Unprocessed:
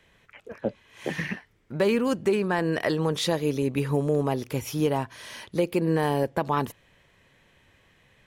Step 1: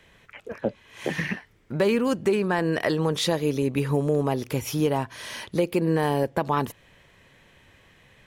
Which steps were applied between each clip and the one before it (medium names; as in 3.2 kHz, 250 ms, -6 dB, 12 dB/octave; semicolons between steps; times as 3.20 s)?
in parallel at -0.5 dB: compression, threshold -32 dBFS, peak gain reduction 13 dB; on the sum: short-mantissa float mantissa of 8-bit; trim -1 dB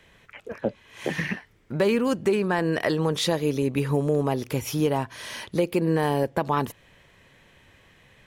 no audible change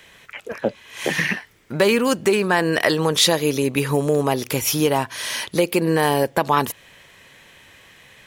tilt EQ +2 dB/octave; trim +7 dB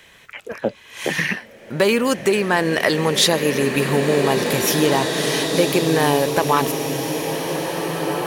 swelling reverb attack 2420 ms, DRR 3 dB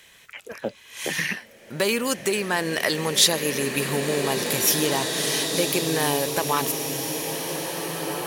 peaking EQ 15 kHz +10.5 dB 2.3 oct; trim -7.5 dB